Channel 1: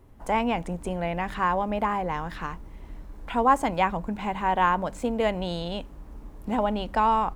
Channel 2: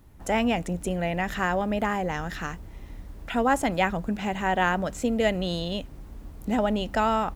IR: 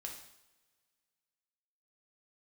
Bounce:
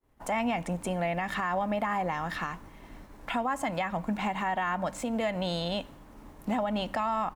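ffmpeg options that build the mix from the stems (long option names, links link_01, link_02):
-filter_complex "[0:a]lowshelf=frequency=260:gain=-11.5,acompressor=threshold=-31dB:ratio=2,volume=2.5dB,asplit=2[link_01][link_02];[link_02]volume=-13dB[link_03];[1:a]equalizer=frequency=1900:width=1.5:gain=7.5,volume=-1,adelay=1.8,volume=-10dB[link_04];[2:a]atrim=start_sample=2205[link_05];[link_03][link_05]afir=irnorm=-1:irlink=0[link_06];[link_01][link_04][link_06]amix=inputs=3:normalize=0,agate=range=-33dB:threshold=-46dB:ratio=3:detection=peak,alimiter=limit=-21dB:level=0:latency=1:release=102"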